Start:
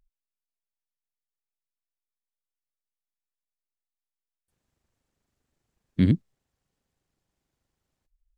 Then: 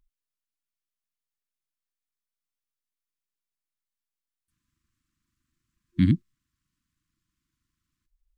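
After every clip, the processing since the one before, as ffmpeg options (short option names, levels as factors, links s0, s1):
-af "afftfilt=real='re*(1-between(b*sr/4096,350,990))':imag='im*(1-between(b*sr/4096,350,990))':win_size=4096:overlap=0.75"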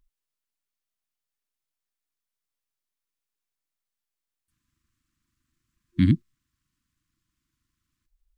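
-af "equalizer=f=180:t=o:w=0.33:g=-3,volume=1.26"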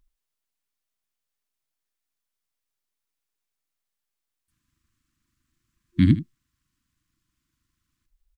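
-af "aecho=1:1:78:0.188,volume=1.26"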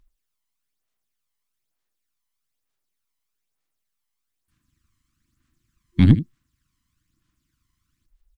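-af "aeval=exprs='0.562*(cos(1*acos(clip(val(0)/0.562,-1,1)))-cos(1*PI/2))+0.0316*(cos(6*acos(clip(val(0)/0.562,-1,1)))-cos(6*PI/2))':c=same,aphaser=in_gain=1:out_gain=1:delay=1:decay=0.45:speed=1.1:type=sinusoidal,volume=1.12"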